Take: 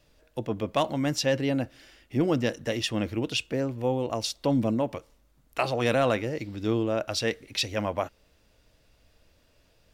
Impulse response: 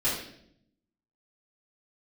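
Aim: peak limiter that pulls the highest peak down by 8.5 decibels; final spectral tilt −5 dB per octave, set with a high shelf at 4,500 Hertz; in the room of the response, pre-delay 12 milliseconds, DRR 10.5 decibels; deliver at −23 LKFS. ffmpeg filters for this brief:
-filter_complex "[0:a]highshelf=frequency=4500:gain=-5,alimiter=limit=-20.5dB:level=0:latency=1,asplit=2[link_01][link_02];[1:a]atrim=start_sample=2205,adelay=12[link_03];[link_02][link_03]afir=irnorm=-1:irlink=0,volume=-20.5dB[link_04];[link_01][link_04]amix=inputs=2:normalize=0,volume=8dB"

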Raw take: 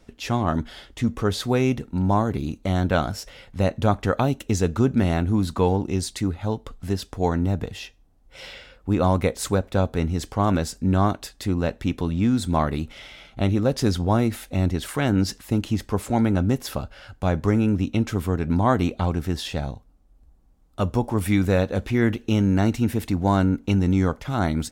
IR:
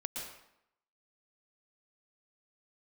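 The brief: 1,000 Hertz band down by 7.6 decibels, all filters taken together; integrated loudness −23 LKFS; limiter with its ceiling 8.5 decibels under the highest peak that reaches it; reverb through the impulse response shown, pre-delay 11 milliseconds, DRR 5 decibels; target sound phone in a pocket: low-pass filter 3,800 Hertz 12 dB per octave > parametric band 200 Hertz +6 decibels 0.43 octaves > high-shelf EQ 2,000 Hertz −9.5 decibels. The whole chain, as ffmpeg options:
-filter_complex "[0:a]equalizer=frequency=1000:width_type=o:gain=-8.5,alimiter=limit=-16dB:level=0:latency=1,asplit=2[link_01][link_02];[1:a]atrim=start_sample=2205,adelay=11[link_03];[link_02][link_03]afir=irnorm=-1:irlink=0,volume=-6dB[link_04];[link_01][link_04]amix=inputs=2:normalize=0,lowpass=3800,equalizer=frequency=200:width_type=o:width=0.43:gain=6,highshelf=frequency=2000:gain=-9.5,volume=1.5dB"

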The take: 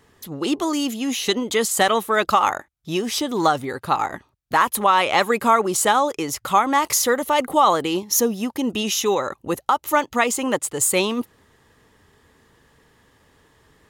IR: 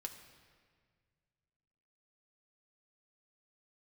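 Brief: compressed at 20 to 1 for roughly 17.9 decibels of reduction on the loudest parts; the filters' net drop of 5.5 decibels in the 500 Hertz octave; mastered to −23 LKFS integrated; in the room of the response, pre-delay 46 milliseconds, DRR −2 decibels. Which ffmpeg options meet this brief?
-filter_complex "[0:a]equalizer=frequency=500:width_type=o:gain=-7,acompressor=threshold=-31dB:ratio=20,asplit=2[link_01][link_02];[1:a]atrim=start_sample=2205,adelay=46[link_03];[link_02][link_03]afir=irnorm=-1:irlink=0,volume=5dB[link_04];[link_01][link_04]amix=inputs=2:normalize=0,volume=8dB"

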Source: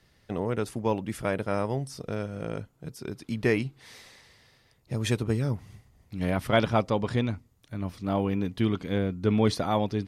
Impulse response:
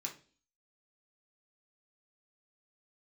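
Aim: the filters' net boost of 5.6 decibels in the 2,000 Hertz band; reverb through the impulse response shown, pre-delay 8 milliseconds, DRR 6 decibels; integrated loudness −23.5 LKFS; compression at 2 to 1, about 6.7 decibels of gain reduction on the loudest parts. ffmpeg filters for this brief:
-filter_complex "[0:a]equalizer=frequency=2000:width_type=o:gain=7,acompressor=threshold=-29dB:ratio=2,asplit=2[link_01][link_02];[1:a]atrim=start_sample=2205,adelay=8[link_03];[link_02][link_03]afir=irnorm=-1:irlink=0,volume=-5dB[link_04];[link_01][link_04]amix=inputs=2:normalize=0,volume=9dB"

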